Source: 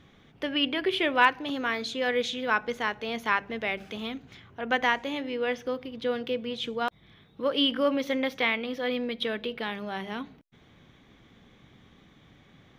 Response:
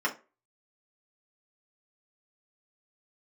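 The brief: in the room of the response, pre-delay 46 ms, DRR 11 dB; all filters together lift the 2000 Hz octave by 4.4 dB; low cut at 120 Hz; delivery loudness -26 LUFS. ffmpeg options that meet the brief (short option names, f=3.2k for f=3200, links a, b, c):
-filter_complex "[0:a]highpass=120,equalizer=f=2k:t=o:g=5.5,asplit=2[a][b];[1:a]atrim=start_sample=2205,adelay=46[c];[b][c]afir=irnorm=-1:irlink=0,volume=-20.5dB[d];[a][d]amix=inputs=2:normalize=0"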